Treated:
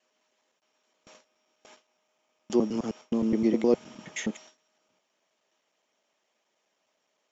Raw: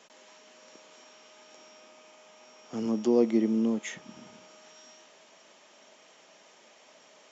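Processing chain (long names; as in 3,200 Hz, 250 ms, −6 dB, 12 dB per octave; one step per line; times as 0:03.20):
slices reordered back to front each 104 ms, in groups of 6
harmonic and percussive parts rebalanced percussive +4 dB
noise gate with hold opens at −36 dBFS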